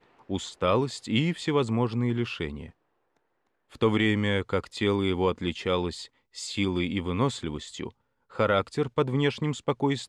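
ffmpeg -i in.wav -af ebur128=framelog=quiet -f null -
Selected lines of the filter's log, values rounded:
Integrated loudness:
  I:         -27.5 LUFS
  Threshold: -38.1 LUFS
Loudness range:
  LRA:         2.2 LU
  Threshold: -48.6 LUFS
  LRA low:   -29.9 LUFS
  LRA high:  -27.7 LUFS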